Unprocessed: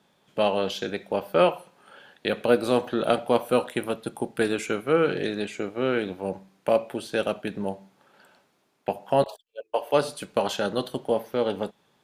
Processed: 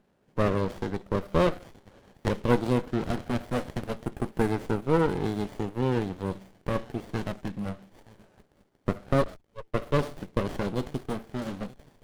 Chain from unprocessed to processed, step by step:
delay with a high-pass on its return 926 ms, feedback 36%, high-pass 4,400 Hz, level −5.5 dB
auto-filter notch saw down 0.25 Hz 330–4,400 Hz
windowed peak hold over 33 samples

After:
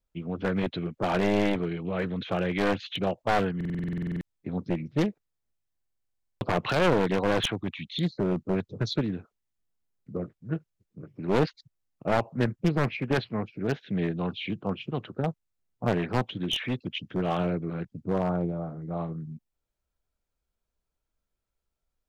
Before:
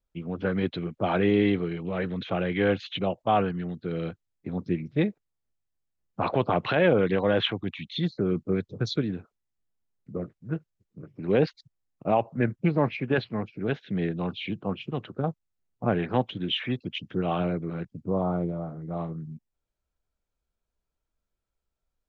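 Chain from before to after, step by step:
wavefolder on the positive side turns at −22 dBFS
buffer that repeats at 0:03.56/0:05.76, samples 2,048, times 13
highs frequency-modulated by the lows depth 0.2 ms

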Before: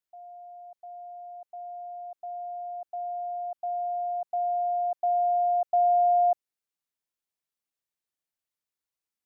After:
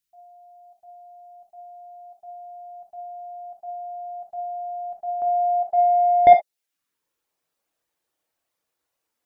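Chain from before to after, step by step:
reverb reduction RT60 0.66 s
parametric band 640 Hz −15 dB 2.5 octaves, from 0:05.22 −7.5 dB, from 0:06.27 +8.5 dB
soft clipping −16 dBFS, distortion −13 dB
reverb whose tail is shaped and stops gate 90 ms flat, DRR 3.5 dB
level +8.5 dB

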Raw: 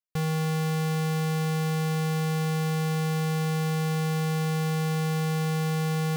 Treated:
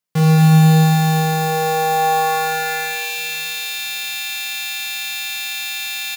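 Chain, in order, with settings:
mains-hum notches 50/100/150/200/250/300/350/400/450 Hz
in parallel at −9 dB: wrap-around overflow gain 30.5 dB
on the sum: high-pass filter sweep 150 Hz → 2,700 Hz, 0:00.64–0:03.14
on a send: repeating echo 269 ms, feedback 53%, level −19 dB
on the sum: four-comb reverb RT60 3.3 s, combs from 30 ms, DRR −0.5 dB
feedback echo at a low word length 229 ms, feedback 55%, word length 7 bits, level −5.5 dB
level +7.5 dB

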